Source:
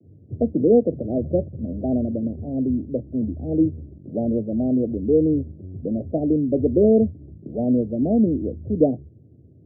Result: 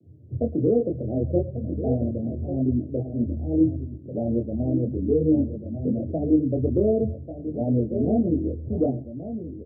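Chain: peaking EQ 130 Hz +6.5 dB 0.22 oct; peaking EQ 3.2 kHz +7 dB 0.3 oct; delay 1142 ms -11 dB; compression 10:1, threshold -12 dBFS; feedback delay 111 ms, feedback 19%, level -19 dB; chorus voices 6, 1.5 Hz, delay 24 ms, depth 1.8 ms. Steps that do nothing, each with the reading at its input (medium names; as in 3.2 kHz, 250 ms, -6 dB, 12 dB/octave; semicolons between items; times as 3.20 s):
peaking EQ 3.2 kHz: input has nothing above 760 Hz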